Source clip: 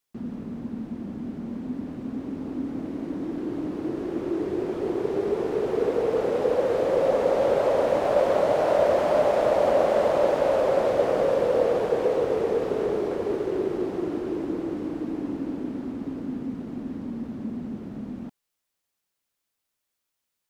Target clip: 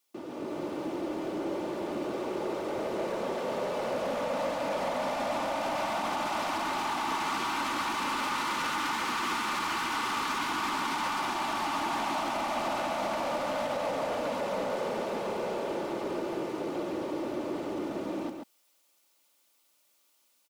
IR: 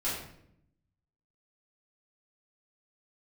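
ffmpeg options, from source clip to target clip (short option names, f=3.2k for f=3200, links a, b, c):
-filter_complex "[0:a]afftfilt=real='re*lt(hypot(re,im),0.112)':imag='im*lt(hypot(re,im),0.112)':win_size=1024:overlap=0.75,highpass=300,equalizer=f=1.7k:t=o:w=0.36:g=-7,aecho=1:1:3.4:0.4,alimiter=level_in=8.5dB:limit=-24dB:level=0:latency=1,volume=-8.5dB,dynaudnorm=f=310:g=3:m=6.5dB,aeval=exprs='0.0531*sin(PI/2*1.41*val(0)/0.0531)':c=same,asplit=2[a][b];[b]aecho=0:1:138:0.501[c];[a][c]amix=inputs=2:normalize=0,volume=-2dB"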